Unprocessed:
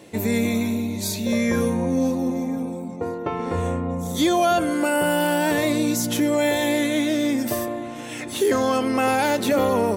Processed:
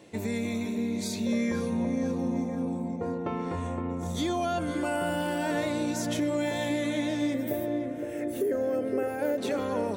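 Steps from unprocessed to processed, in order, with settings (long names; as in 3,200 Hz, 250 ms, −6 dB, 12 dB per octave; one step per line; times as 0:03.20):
0:07.34–0:09.38: drawn EQ curve 230 Hz 0 dB, 560 Hz +8 dB, 1,000 Hz −14 dB, 1,600 Hz −1 dB, 3,600 Hz −16 dB, 8,400 Hz −7 dB, 15,000 Hz +12 dB
downward compressor 3 to 1, threshold −21 dBFS, peak gain reduction 7.5 dB
parametric band 13,000 Hz −14.5 dB 0.41 octaves
feedback echo with a low-pass in the loop 515 ms, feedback 56%, low-pass 1,500 Hz, level −5.5 dB
level −6.5 dB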